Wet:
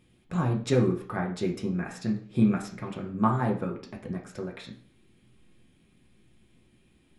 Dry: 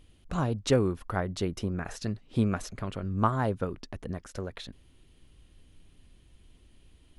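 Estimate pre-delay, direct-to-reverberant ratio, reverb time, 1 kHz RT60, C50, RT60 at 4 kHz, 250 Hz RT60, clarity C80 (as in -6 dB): 3 ms, 0.0 dB, 0.55 s, 0.50 s, 10.0 dB, 0.50 s, 0.65 s, 14.0 dB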